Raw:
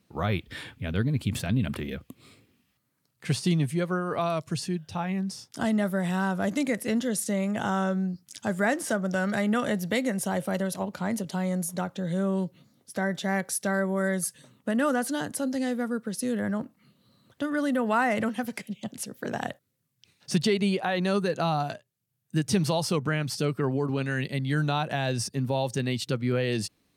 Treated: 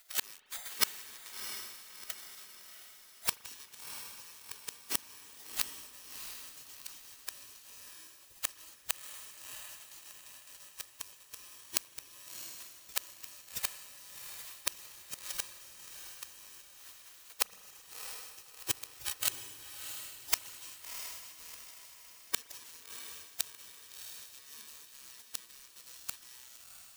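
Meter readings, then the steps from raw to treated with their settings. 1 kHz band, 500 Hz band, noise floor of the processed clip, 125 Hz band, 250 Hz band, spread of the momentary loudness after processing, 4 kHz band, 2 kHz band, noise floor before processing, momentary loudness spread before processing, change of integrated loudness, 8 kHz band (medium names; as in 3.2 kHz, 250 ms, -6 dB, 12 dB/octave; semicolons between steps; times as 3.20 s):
-19.5 dB, -29.5 dB, -58 dBFS, -35.5 dB, -36.0 dB, 15 LU, -4.5 dB, -14.0 dB, -73 dBFS, 8 LU, -11.5 dB, -2.5 dB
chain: bit-reversed sample order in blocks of 64 samples; spectral gate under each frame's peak -25 dB weak; dynamic bell 6.4 kHz, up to +4 dB, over -53 dBFS, Q 1.4; in parallel at -4 dB: bit crusher 6-bit; on the sum: inverted gate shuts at -27 dBFS, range -37 dB; on a send: echo that smears into a reverb 692 ms, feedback 47%, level -8 dB; on the sum: spring tank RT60 3.7 s, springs 38 ms, DRR 18 dB; trim +17.5 dB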